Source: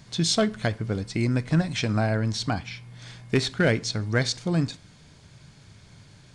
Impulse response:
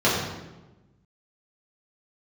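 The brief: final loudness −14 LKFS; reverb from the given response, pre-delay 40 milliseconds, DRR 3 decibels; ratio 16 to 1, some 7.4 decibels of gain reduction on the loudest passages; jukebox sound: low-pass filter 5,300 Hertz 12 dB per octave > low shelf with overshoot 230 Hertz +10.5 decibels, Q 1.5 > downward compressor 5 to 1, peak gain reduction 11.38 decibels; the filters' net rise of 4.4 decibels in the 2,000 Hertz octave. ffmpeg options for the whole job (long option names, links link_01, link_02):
-filter_complex "[0:a]equalizer=frequency=2000:width_type=o:gain=6,acompressor=threshold=-23dB:ratio=16,asplit=2[link_01][link_02];[1:a]atrim=start_sample=2205,adelay=40[link_03];[link_02][link_03]afir=irnorm=-1:irlink=0,volume=-22dB[link_04];[link_01][link_04]amix=inputs=2:normalize=0,lowpass=5300,lowshelf=frequency=230:width_type=q:width=1.5:gain=10.5,acompressor=threshold=-19dB:ratio=5,volume=9.5dB"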